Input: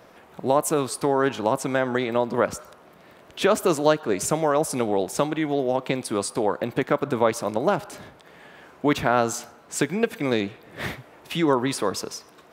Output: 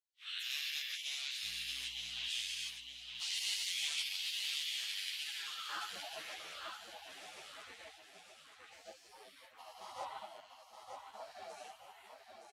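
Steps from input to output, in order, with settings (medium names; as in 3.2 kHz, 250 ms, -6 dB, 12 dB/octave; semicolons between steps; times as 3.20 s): every event in the spectrogram widened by 480 ms; gate -31 dBFS, range -22 dB; spectral gate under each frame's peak -30 dB weak; peaking EQ 580 Hz +5 dB 1.8 oct; 5.69–6.72 s: waveshaping leveller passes 3; band-pass sweep 3.1 kHz -> 630 Hz, 5.09–6.05 s; 1.42–2.27 s: mains buzz 60 Hz, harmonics 5, -65 dBFS -5 dB/octave; feedback delay 918 ms, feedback 38%, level -6 dB; three-phase chorus; trim +3.5 dB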